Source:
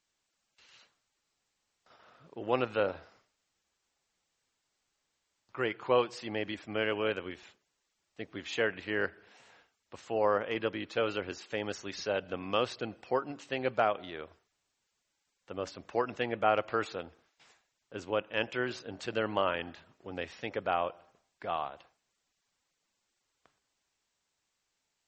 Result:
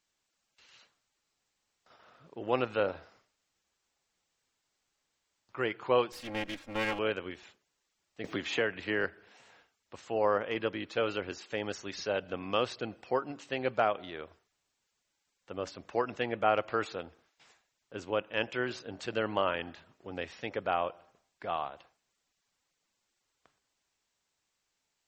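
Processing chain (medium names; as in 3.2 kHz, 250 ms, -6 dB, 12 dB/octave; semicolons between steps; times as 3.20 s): 6.12–6.99 s: comb filter that takes the minimum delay 3.7 ms; 8.24–9.04 s: three bands compressed up and down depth 70%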